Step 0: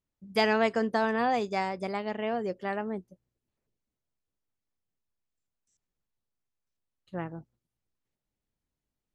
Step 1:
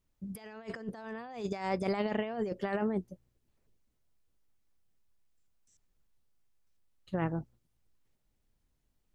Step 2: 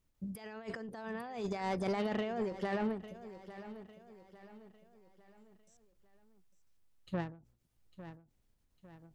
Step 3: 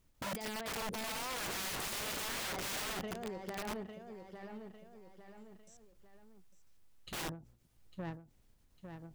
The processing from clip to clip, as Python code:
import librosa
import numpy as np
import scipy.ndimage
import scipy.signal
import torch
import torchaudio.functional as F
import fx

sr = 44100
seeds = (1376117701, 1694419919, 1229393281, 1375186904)

y1 = fx.low_shelf(x, sr, hz=63.0, db=10.0)
y1 = fx.over_compress(y1, sr, threshold_db=-34.0, ratio=-0.5)
y2 = 10.0 ** (-29.5 / 20.0) * np.tanh(y1 / 10.0 ** (-29.5 / 20.0))
y2 = fx.echo_feedback(y2, sr, ms=852, feedback_pct=42, wet_db=-14)
y2 = fx.end_taper(y2, sr, db_per_s=130.0)
y2 = y2 * 10.0 ** (1.0 / 20.0)
y3 = (np.mod(10.0 ** (41.5 / 20.0) * y2 + 1.0, 2.0) - 1.0) / 10.0 ** (41.5 / 20.0)
y3 = y3 * 10.0 ** (7.0 / 20.0)